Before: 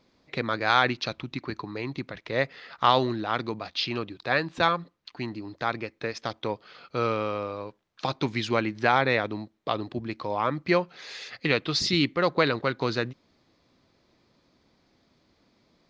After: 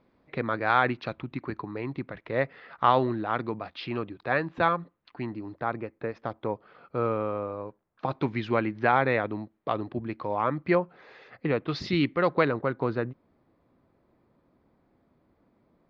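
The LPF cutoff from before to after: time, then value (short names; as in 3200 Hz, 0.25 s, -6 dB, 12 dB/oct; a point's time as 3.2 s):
1900 Hz
from 5.6 s 1300 Hz
from 8.11 s 2000 Hz
from 10.75 s 1200 Hz
from 11.68 s 2300 Hz
from 12.45 s 1300 Hz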